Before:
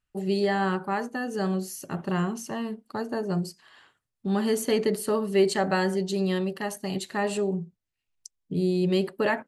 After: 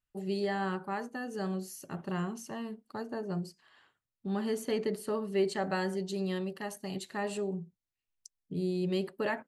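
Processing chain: 3.03–5.62 high shelf 5200 Hz -5.5 dB; gain -7.5 dB

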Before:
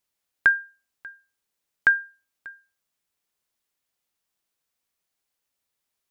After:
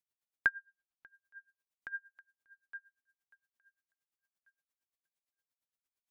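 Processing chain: 0.49–1.07 air absorption 120 m; thinning echo 0.865 s, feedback 22%, level -16.5 dB; dB-linear tremolo 8.7 Hz, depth 28 dB; gain -8.5 dB

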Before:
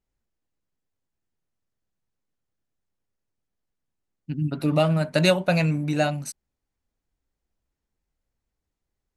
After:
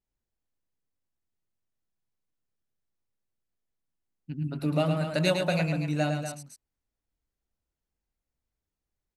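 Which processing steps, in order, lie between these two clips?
loudspeakers at several distances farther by 37 m -6 dB, 83 m -9 dB; gain -6.5 dB

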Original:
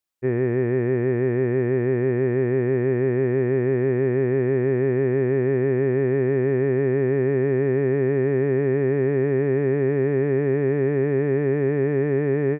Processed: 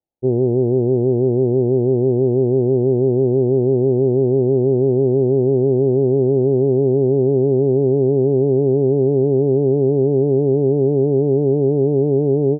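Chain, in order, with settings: steep low-pass 860 Hz 72 dB/oct; gain +5.5 dB

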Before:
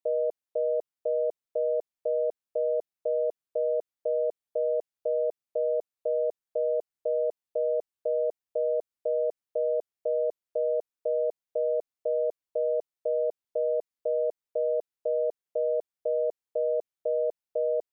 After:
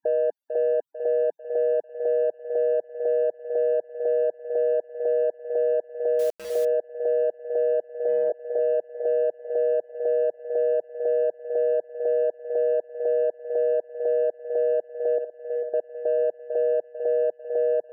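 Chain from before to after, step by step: in parallel at -12 dB: overloaded stage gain 29.5 dB; 7.93–8.59 on the sum: doubler 20 ms -5 dB; 15.18–15.74 level quantiser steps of 23 dB; on a send: thinning echo 0.446 s, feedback 57%, high-pass 400 Hz, level -9.5 dB; on the sum: loudest bins only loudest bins 32; limiter -24.5 dBFS, peak gain reduction 6 dB; 6.19–6.65 requantised 8-bit, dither none; gain +8 dB

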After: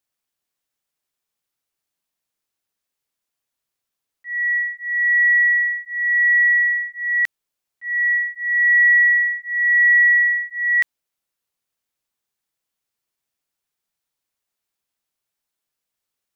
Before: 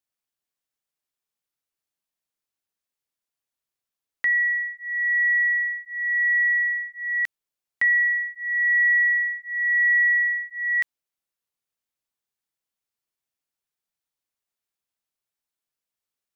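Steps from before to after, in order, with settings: auto swell 0.334 s; gain +5.5 dB

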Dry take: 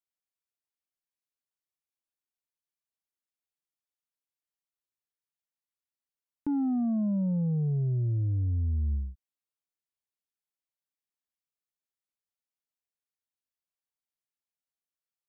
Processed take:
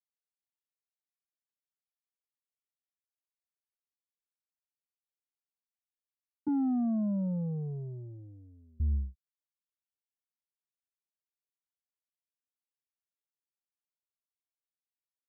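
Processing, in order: 6.48–8.8 HPF 190 Hz 12 dB/oct; expander -30 dBFS

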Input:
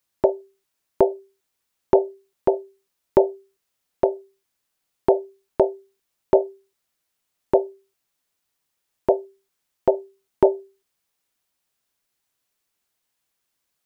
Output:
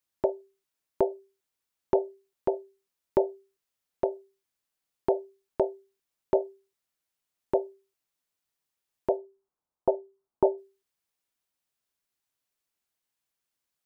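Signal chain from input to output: 9.17–10.58 resonant high shelf 1500 Hz -13.5 dB, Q 1.5; gain -8 dB

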